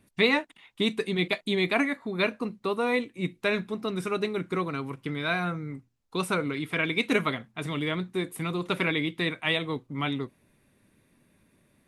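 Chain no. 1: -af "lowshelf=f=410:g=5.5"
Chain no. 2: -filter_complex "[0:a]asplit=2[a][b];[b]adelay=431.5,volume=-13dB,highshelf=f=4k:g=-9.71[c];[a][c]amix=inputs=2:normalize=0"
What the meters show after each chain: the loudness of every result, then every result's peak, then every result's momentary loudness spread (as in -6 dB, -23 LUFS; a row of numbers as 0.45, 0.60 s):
-26.5, -28.5 LUFS; -6.5, -7.5 dBFS; 8, 9 LU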